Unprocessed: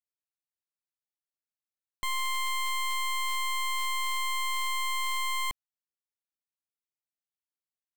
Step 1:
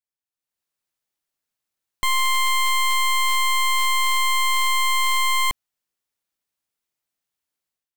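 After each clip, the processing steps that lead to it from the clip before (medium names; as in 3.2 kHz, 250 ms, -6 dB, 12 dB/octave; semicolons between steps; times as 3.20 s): level rider gain up to 12 dB; trim -1.5 dB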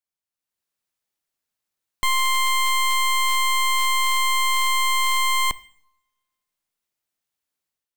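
reverberation RT60 0.80 s, pre-delay 3 ms, DRR 17.5 dB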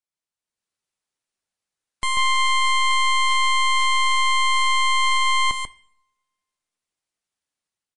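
delay 141 ms -4.5 dB; trim -1.5 dB; MP3 40 kbps 24 kHz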